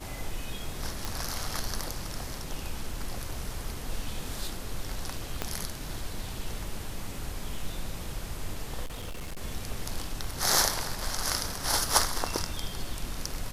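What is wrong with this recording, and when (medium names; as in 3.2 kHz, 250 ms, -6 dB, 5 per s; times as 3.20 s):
1.05 s: pop
5.42 s: pop -13 dBFS
8.84–9.41 s: clipped -33 dBFS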